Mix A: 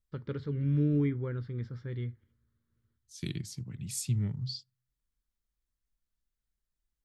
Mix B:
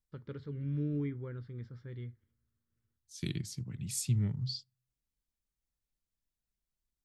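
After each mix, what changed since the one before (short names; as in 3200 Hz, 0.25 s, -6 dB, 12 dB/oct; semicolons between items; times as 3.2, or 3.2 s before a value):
first voice -7.0 dB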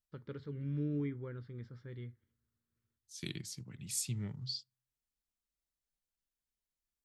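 second voice: add low shelf 340 Hz -6.5 dB; master: add low shelf 100 Hz -8 dB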